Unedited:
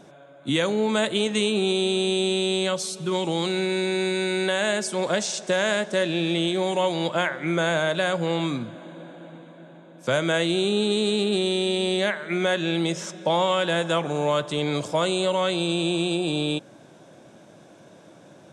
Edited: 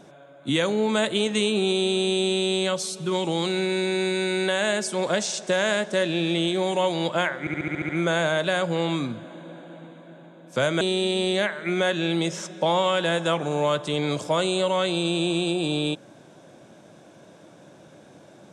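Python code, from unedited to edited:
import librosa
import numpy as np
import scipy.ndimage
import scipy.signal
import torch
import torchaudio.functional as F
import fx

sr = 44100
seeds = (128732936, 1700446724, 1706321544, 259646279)

y = fx.edit(x, sr, fx.stutter(start_s=7.4, slice_s=0.07, count=8),
    fx.cut(start_s=10.32, length_s=1.13), tone=tone)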